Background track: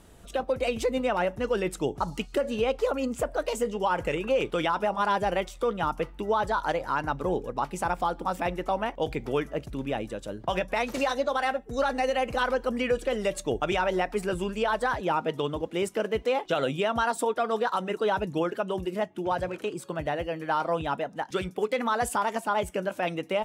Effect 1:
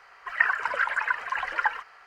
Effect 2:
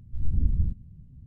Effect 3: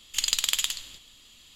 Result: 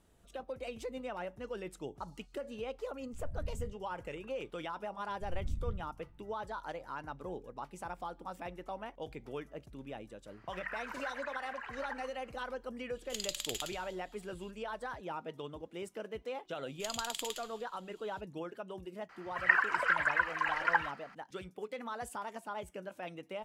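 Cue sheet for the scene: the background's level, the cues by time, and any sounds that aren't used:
background track −14.5 dB
0:03.00: mix in 2 −16.5 dB
0:05.08: mix in 2 −13.5 dB
0:10.26: mix in 1 −12.5 dB + downward compressor 2 to 1, threshold −29 dBFS
0:12.96: mix in 3 −13.5 dB
0:16.66: mix in 3 −15 dB
0:19.09: mix in 1 −3.5 dB

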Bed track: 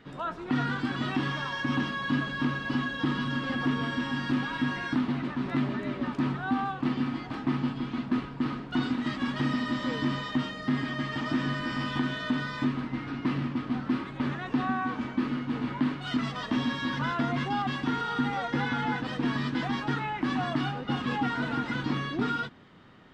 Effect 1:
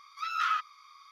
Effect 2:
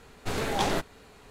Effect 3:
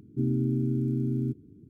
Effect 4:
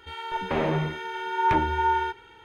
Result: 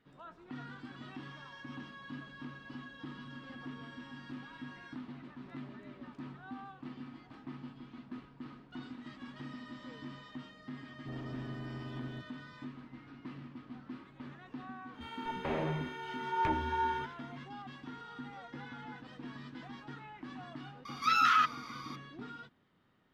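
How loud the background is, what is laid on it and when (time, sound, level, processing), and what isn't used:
bed track −17.5 dB
0:10.89: mix in 3 −10.5 dB + soft clipping −30 dBFS
0:14.94: mix in 4 −9.5 dB
0:20.85: mix in 1 −17.5 dB + boost into a limiter +25.5 dB
not used: 2

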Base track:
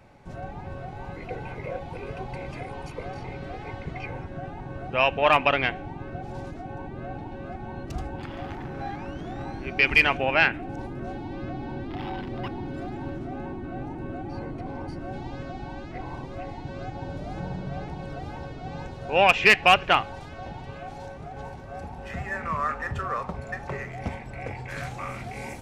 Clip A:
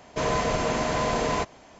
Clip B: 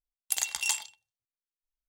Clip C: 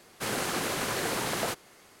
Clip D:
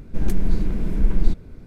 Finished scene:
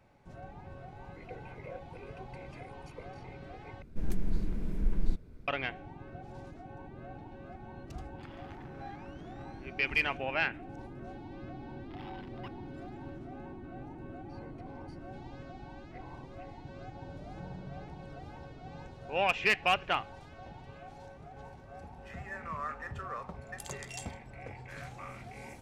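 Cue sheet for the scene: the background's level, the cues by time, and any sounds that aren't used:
base track −10.5 dB
0:03.82: overwrite with D −11 dB
0:23.28: mix in B −15.5 dB + low-pass filter 10,000 Hz
not used: A, C

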